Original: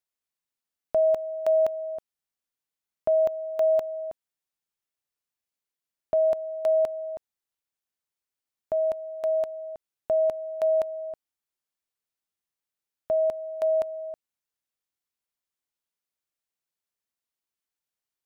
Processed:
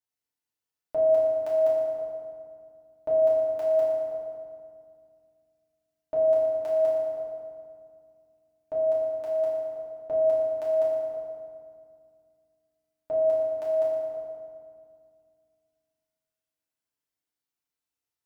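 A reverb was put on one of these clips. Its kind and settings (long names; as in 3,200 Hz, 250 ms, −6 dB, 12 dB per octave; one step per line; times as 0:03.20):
feedback delay network reverb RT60 2.1 s, low-frequency decay 1.5×, high-frequency decay 0.65×, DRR −8.5 dB
level −9 dB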